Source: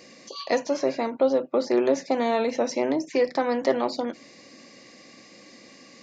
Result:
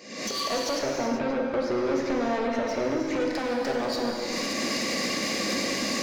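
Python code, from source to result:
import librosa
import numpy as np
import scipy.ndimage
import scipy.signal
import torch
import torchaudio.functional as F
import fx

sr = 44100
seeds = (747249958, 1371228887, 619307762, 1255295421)

y = fx.recorder_agc(x, sr, target_db=-19.0, rise_db_per_s=79.0, max_gain_db=30)
y = scipy.signal.sosfilt(scipy.signal.butter(2, 140.0, 'highpass', fs=sr, output='sos'), y)
y = 10.0 ** (-26.5 / 20.0) * np.tanh(y / 10.0 ** (-26.5 / 20.0))
y = fx.bass_treble(y, sr, bass_db=3, treble_db=-11, at=(0.79, 3.2))
y = fx.rev_gated(y, sr, seeds[0], gate_ms=410, shape='flat', drr_db=-0.5)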